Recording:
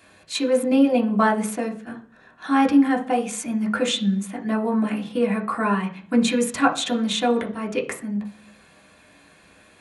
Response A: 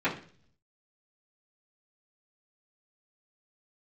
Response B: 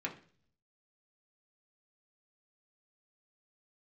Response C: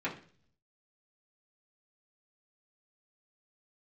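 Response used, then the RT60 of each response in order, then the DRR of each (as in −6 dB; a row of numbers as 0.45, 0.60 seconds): B; 0.45, 0.45, 0.45 seconds; −13.5, −2.0, −8.5 decibels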